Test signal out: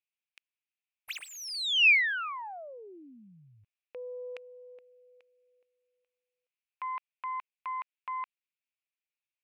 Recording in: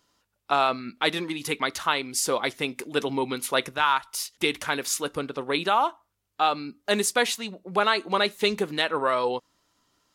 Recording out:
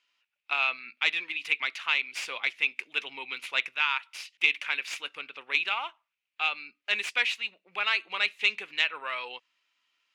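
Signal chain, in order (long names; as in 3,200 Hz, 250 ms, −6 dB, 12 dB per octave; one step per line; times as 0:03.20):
stylus tracing distortion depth 0.058 ms
resonant band-pass 2,500 Hz, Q 4.9
level +8 dB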